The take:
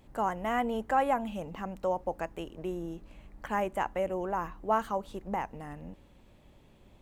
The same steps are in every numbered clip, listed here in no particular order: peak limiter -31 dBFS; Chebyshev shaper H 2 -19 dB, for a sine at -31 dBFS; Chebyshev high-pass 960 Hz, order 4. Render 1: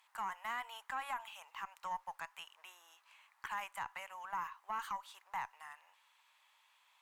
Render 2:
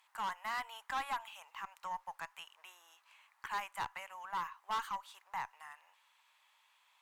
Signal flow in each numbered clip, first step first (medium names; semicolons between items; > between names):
Chebyshev high-pass > peak limiter > Chebyshev shaper; Chebyshev high-pass > Chebyshev shaper > peak limiter